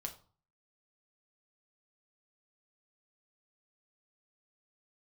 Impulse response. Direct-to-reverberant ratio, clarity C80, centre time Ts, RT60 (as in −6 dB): 3.0 dB, 17.5 dB, 10 ms, 0.40 s